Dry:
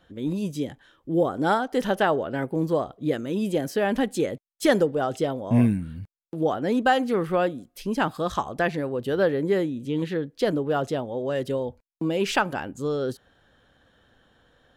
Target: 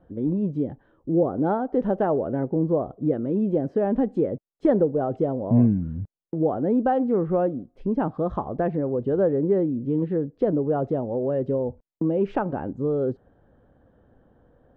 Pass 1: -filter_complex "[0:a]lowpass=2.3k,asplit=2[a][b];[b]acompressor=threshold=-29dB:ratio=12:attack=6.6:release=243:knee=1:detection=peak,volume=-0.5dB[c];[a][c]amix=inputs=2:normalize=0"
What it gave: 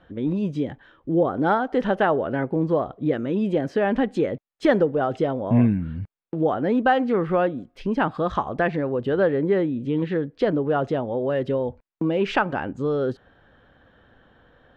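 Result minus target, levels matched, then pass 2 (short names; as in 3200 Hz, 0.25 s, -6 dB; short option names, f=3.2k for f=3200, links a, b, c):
2000 Hz band +13.0 dB
-filter_complex "[0:a]lowpass=660,asplit=2[a][b];[b]acompressor=threshold=-29dB:ratio=12:attack=6.6:release=243:knee=1:detection=peak,volume=-0.5dB[c];[a][c]amix=inputs=2:normalize=0"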